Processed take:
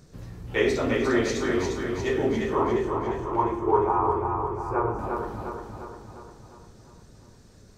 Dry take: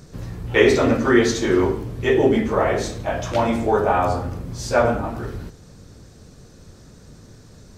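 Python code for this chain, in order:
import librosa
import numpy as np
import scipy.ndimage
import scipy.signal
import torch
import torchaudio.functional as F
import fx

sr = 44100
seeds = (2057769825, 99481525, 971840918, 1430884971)

y = fx.curve_eq(x, sr, hz=(150.0, 240.0, 360.0, 620.0, 1000.0, 1500.0, 2400.0, 3800.0, 11000.0), db=(0, -13, 13, -12, 13, -7, -11, -24, -14), at=(2.55, 4.99))
y = fx.echo_feedback(y, sr, ms=352, feedback_pct=54, wet_db=-4.5)
y = y * librosa.db_to_amplitude(-8.5)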